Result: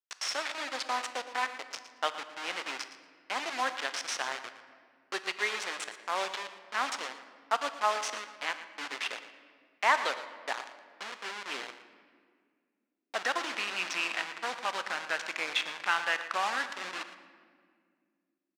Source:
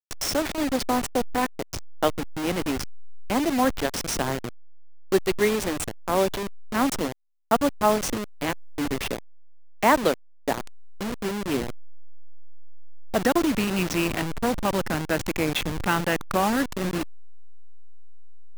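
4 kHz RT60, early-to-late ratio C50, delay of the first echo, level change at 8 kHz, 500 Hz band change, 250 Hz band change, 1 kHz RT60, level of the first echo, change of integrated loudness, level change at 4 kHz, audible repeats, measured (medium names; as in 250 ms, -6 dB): 1.3 s, 10.0 dB, 115 ms, -8.0 dB, -14.0 dB, -24.5 dB, 1.7 s, -14.0 dB, -7.5 dB, -2.5 dB, 1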